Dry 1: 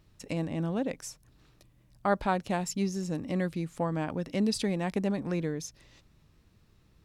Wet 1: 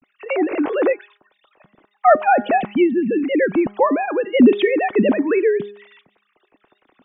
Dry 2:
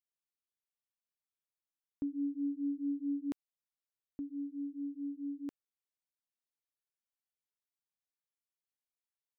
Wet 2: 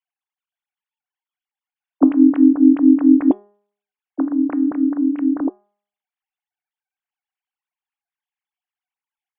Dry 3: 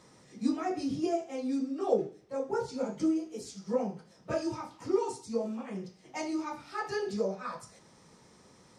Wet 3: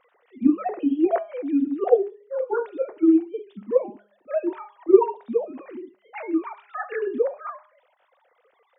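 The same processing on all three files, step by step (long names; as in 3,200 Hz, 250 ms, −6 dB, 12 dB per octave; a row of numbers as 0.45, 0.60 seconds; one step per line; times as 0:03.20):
three sine waves on the formant tracks
tuned comb filter 370 Hz, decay 0.27 s, harmonics all, mix 40%
hum removal 204.7 Hz, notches 9
normalise the peak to −1.5 dBFS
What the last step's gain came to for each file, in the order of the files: +18.0, +27.5, +13.5 decibels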